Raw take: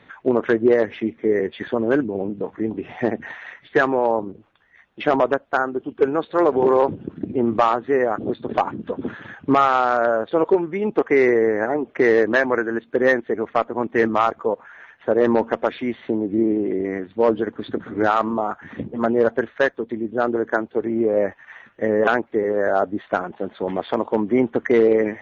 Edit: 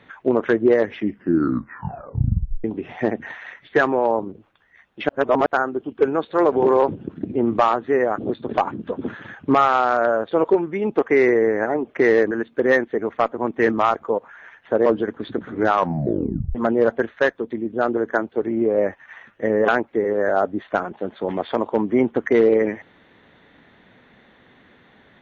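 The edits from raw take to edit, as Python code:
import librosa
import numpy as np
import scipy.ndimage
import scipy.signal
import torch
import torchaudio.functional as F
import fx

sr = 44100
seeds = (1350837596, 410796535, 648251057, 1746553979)

y = fx.edit(x, sr, fx.tape_stop(start_s=0.95, length_s=1.69),
    fx.reverse_span(start_s=5.09, length_s=0.37),
    fx.cut(start_s=12.31, length_s=0.36),
    fx.cut(start_s=15.22, length_s=2.03),
    fx.tape_stop(start_s=18.09, length_s=0.85), tone=tone)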